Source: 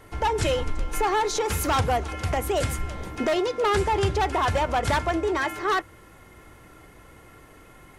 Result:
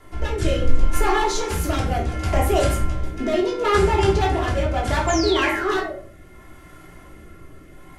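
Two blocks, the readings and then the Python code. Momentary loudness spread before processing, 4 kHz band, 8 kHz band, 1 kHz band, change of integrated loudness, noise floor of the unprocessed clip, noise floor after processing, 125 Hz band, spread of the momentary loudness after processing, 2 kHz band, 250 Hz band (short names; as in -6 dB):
5 LU, +3.5 dB, +2.5 dB, +1.0 dB, +3.5 dB, -51 dBFS, -45 dBFS, +5.5 dB, 7 LU, +3.0 dB, +6.0 dB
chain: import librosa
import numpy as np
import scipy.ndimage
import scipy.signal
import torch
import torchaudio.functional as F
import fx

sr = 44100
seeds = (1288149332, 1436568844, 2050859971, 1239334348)

y = fx.spec_paint(x, sr, seeds[0], shape='fall', start_s=5.07, length_s=0.86, low_hz=540.0, high_hz=7500.0, level_db=-32.0)
y = fx.rotary(y, sr, hz=0.7)
y = fx.room_shoebox(y, sr, seeds[1], volume_m3=390.0, walls='furnished', distance_m=3.1)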